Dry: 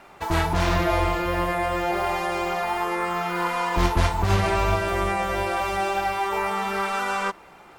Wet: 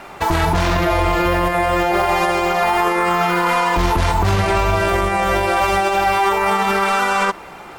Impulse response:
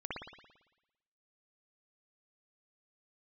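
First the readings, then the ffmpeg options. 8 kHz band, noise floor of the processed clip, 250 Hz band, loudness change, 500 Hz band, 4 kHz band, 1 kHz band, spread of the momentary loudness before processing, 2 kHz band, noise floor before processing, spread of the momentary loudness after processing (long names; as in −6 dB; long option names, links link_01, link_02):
+7.5 dB, −37 dBFS, +7.0 dB, +7.5 dB, +7.5 dB, +7.5 dB, +8.0 dB, 4 LU, +8.0 dB, −49 dBFS, 1 LU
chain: -af "alimiter=level_in=19dB:limit=-1dB:release=50:level=0:latency=1,volume=-7dB"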